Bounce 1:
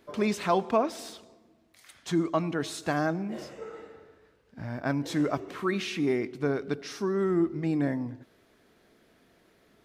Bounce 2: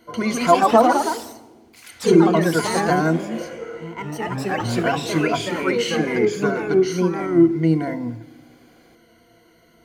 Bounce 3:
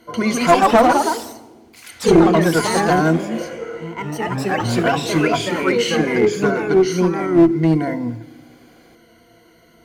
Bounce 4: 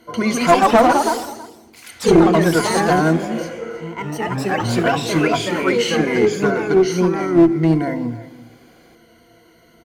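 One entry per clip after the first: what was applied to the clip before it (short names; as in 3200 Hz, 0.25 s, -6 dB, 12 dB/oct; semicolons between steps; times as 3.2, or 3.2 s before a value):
ripple EQ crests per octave 1.9, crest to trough 17 dB; FDN reverb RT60 1.3 s, low-frequency decay 1.5×, high-frequency decay 1×, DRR 17.5 dB; echoes that change speed 0.182 s, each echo +2 st, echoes 3; gain +4.5 dB
one-sided clip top -13 dBFS; gain +3.5 dB
echo 0.324 s -17 dB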